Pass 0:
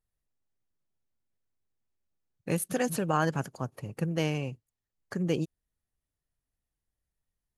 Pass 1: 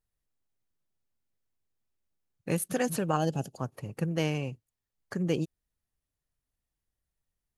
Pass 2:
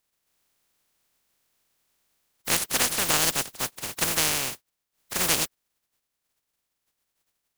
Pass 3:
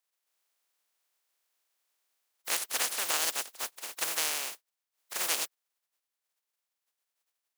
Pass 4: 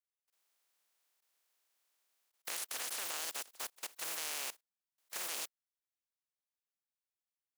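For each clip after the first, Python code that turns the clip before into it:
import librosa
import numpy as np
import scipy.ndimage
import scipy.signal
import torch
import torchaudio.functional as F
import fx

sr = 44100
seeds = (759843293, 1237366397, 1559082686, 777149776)

y1 = fx.spec_box(x, sr, start_s=3.16, length_s=0.41, low_hz=840.0, high_hz=2500.0, gain_db=-13)
y2 = fx.spec_flatten(y1, sr, power=0.14)
y2 = y2 * librosa.db_to_amplitude(5.0)
y3 = scipy.signal.sosfilt(scipy.signal.butter(2, 500.0, 'highpass', fs=sr, output='sos'), y2)
y3 = y3 * librosa.db_to_amplitude(-6.5)
y4 = fx.level_steps(y3, sr, step_db=20)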